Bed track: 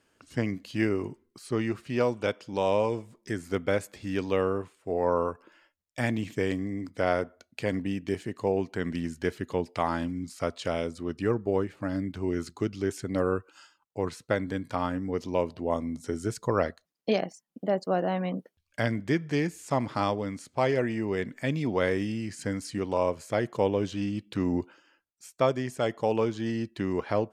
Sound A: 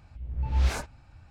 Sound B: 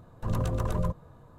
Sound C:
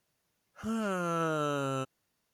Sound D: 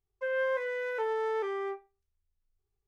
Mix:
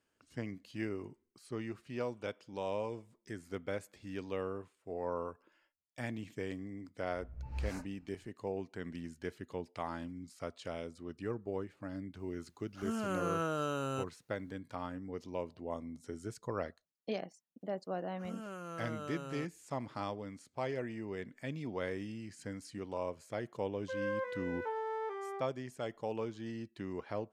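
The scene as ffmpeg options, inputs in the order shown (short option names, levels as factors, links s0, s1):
-filter_complex "[3:a]asplit=2[s0][s1];[0:a]volume=0.251[s2];[1:a]equalizer=f=3400:t=o:w=0.3:g=-11.5[s3];[s1]aresample=32000,aresample=44100[s4];[4:a]equalizer=f=840:w=0.94:g=8.5[s5];[s3]atrim=end=1.3,asetpts=PTS-STARTPTS,volume=0.188,afade=t=in:d=0.004:c=hsin,afade=t=out:st=1.296:d=0.004:c=hsin,adelay=7000[s6];[s0]atrim=end=2.33,asetpts=PTS-STARTPTS,volume=0.631,afade=t=in:d=0.004:c=hsin,afade=t=out:st=2.326:d=0.004:c=hsin,adelay=12190[s7];[s4]atrim=end=2.33,asetpts=PTS-STARTPTS,volume=0.237,afade=t=in:d=0.004:c=hsin,afade=t=out:st=2.326:d=0.004:c=hsin,adelay=17610[s8];[s5]atrim=end=2.87,asetpts=PTS-STARTPTS,volume=0.266,afade=t=in:d=0.004:c=hsin,afade=t=out:st=2.866:d=0.004:c=hsin,adelay=23670[s9];[s2][s6][s7][s8][s9]amix=inputs=5:normalize=0"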